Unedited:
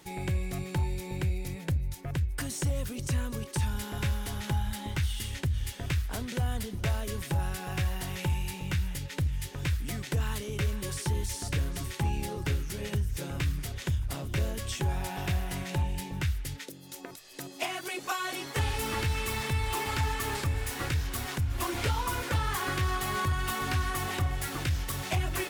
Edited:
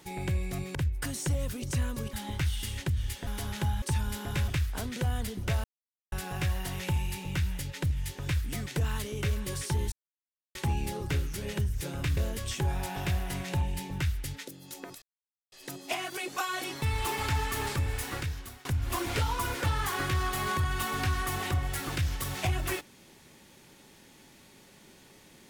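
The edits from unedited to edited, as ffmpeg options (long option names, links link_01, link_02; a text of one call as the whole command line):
ffmpeg -i in.wav -filter_complex "[0:a]asplit=14[link_01][link_02][link_03][link_04][link_05][link_06][link_07][link_08][link_09][link_10][link_11][link_12][link_13][link_14];[link_01]atrim=end=0.752[link_15];[link_02]atrim=start=2.108:end=3.492[link_16];[link_03]atrim=start=4.698:end=5.842[link_17];[link_04]atrim=start=4.148:end=4.702[link_18];[link_05]atrim=start=3.488:end=4.152[link_19];[link_06]atrim=start=5.838:end=7,asetpts=PTS-STARTPTS,afade=type=out:start_time=1.158:duration=0.004:curve=hsin[link_20];[link_07]atrim=start=7:end=7.48,asetpts=PTS-STARTPTS,volume=0[link_21];[link_08]atrim=start=7.48:end=11.28,asetpts=PTS-STARTPTS,afade=type=in:duration=0.004:curve=hsin,afade=type=out:start_time=3.796:duration=0.004:curve=hsin[link_22];[link_09]atrim=start=11.28:end=11.91,asetpts=PTS-STARTPTS,volume=0[link_23];[link_10]atrim=start=11.91:end=13.532,asetpts=PTS-STARTPTS,afade=type=in:duration=0.004:curve=hsin[link_24];[link_11]atrim=start=14.378:end=17.23,asetpts=PTS-STARTPTS,afade=type=out:start_time=2.848:duration=0.004:curve=hsin,apad=pad_dur=0.5[link_25];[link_12]atrim=start=17.23:end=18.532,asetpts=PTS-STARTPTS,afade=type=in:duration=0.004:curve=hsin[link_26];[link_13]atrim=start=19.498:end=21.33,asetpts=PTS-STARTPTS,afade=type=out:start_time=1.172:duration=0.66:silence=0.0749894[link_27];[link_14]atrim=start=21.33,asetpts=PTS-STARTPTS,afade=type=in:duration=0.004:curve=hsin:silence=0.0749894[link_28];[link_15][link_16]acrossfade=duration=0.004:curve1=hsin:curve2=hsin[link_29];[link_29][link_17]acrossfade=duration=0.004:curve1=hsin:curve2=hsin[link_30];[link_30][link_18]acrossfade=duration=0.004:curve1=hsin:curve2=hsin[link_31];[link_31][link_19]acrossfade=duration=0.004:curve1=hsin:curve2=hsin[link_32];[link_20][link_21][link_22][link_23][link_24]concat=n=5:v=0:a=1[link_33];[link_32][link_33]acrossfade=duration=0.004:curve1=hsin:curve2=hsin[link_34];[link_25][link_26]concat=n=2:v=0:a=1[link_35];[link_34][link_35]acrossfade=duration=0.004:curve1=hsin:curve2=hsin[link_36];[link_27][link_28]concat=n=2:v=0:a=1[link_37];[link_36][link_37]acrossfade=duration=0.004:curve1=hsin:curve2=hsin" out.wav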